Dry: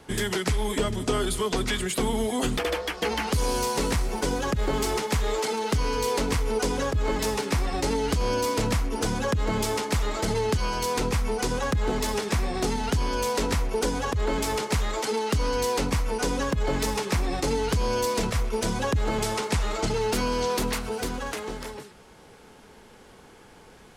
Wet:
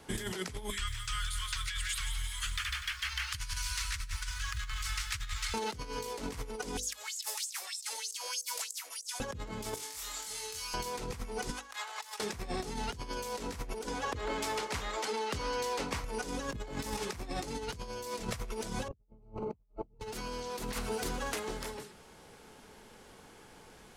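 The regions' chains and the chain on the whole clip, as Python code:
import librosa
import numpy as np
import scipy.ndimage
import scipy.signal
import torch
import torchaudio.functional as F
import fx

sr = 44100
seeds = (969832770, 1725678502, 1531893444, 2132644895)

y = fx.chain(x, sr, fx.cheby2_bandstop(low_hz=160.0, high_hz=760.0, order=4, stop_db=40),
    fx.high_shelf(hz=8700.0, db=-10.0),
    fx.echo_crushed(ms=171, feedback_pct=55, bits=9, wet_db=-8.0), at=(0.7, 5.54))
y = fx.chain(y, sr, fx.differentiator(),
    fx.filter_lfo_highpass(shape='sine', hz=3.2, low_hz=520.0, high_hz=7700.0, q=4.0),
    fx.over_compress(threshold_db=-36.0, ratio=-0.5), at=(6.77, 9.2))
y = fx.chain(y, sr, fx.pre_emphasis(coefficient=0.97),
    fx.over_compress(threshold_db=-42.0, ratio=-1.0),
    fx.room_flutter(wall_m=4.3, rt60_s=0.42), at=(9.74, 10.74))
y = fx.chain(y, sr, fx.highpass(hz=840.0, slope=24),
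    fx.over_compress(threshold_db=-39.0, ratio=-0.5), at=(11.5, 12.2))
y = fx.chain(y, sr, fx.lowpass(hz=3700.0, slope=6),
    fx.low_shelf(hz=320.0, db=-11.0), at=(13.87, 16.04))
y = fx.chain(y, sr, fx.moving_average(points=25),
    fx.tilt_eq(slope=-3.5), at=(18.88, 20.0))
y = fx.high_shelf(y, sr, hz=4400.0, db=4.0)
y = fx.hum_notches(y, sr, base_hz=50, count=10)
y = fx.over_compress(y, sr, threshold_db=-29.0, ratio=-0.5)
y = F.gain(torch.from_numpy(y), -8.5).numpy()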